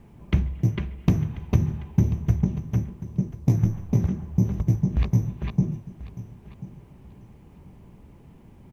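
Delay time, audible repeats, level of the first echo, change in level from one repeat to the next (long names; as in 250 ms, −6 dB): 1,038 ms, 2, −17.0 dB, −14.5 dB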